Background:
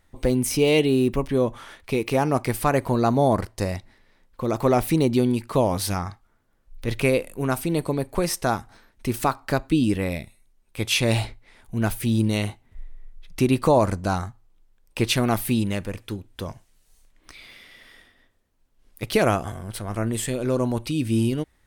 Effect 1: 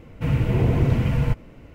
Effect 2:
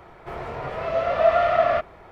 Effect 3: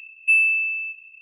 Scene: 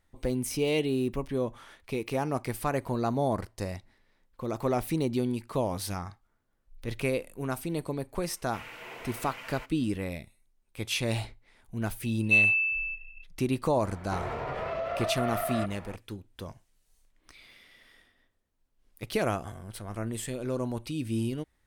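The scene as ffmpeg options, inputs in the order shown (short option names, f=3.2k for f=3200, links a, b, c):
-filter_complex "[0:a]volume=-8.5dB[a];[1:a]highpass=1.1k[b];[3:a]lowpass=4.4k[c];[2:a]acompressor=threshold=-29dB:ratio=6:attack=3.2:release=140:knee=1:detection=peak[d];[b]atrim=end=1.74,asetpts=PTS-STARTPTS,volume=-5.5dB,afade=t=in:d=0.004:c=hsin,afade=t=out:st=1.736:d=0.004:c=hsin,adelay=8320[e];[c]atrim=end=1.21,asetpts=PTS-STARTPTS,volume=-4dB,afade=t=in:d=0.004:c=hsin,afade=t=out:st=1.206:d=0.004:c=hsin,adelay=12030[f];[d]atrim=end=2.11,asetpts=PTS-STARTPTS,volume=-0.5dB,afade=t=in:d=0.004:c=hsin,afade=t=out:st=2.106:d=0.004:c=hsin,adelay=13850[g];[a][e][f][g]amix=inputs=4:normalize=0"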